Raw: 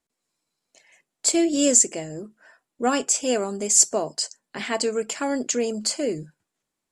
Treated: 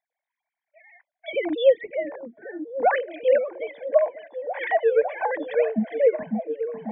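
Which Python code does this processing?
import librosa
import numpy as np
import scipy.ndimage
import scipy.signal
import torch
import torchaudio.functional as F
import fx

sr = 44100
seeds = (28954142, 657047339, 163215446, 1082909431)

y = fx.sine_speech(x, sr)
y = fx.fixed_phaser(y, sr, hz=1900.0, stages=8)
y = fx.echo_stepped(y, sr, ms=546, hz=190.0, octaves=0.7, feedback_pct=70, wet_db=-3)
y = y * librosa.db_to_amplitude(7.0)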